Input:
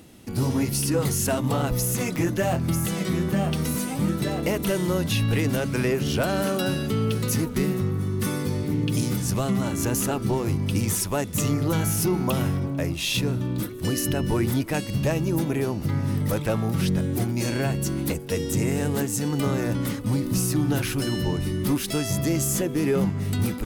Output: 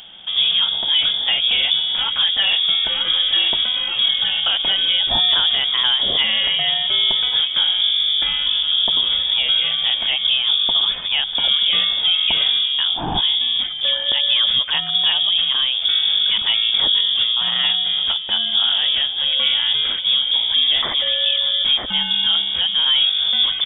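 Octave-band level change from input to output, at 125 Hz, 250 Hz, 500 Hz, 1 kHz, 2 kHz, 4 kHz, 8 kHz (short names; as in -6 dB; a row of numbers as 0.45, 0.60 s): -20.5 dB, -17.5 dB, -11.0 dB, +1.5 dB, +8.0 dB, +24.5 dB, under -40 dB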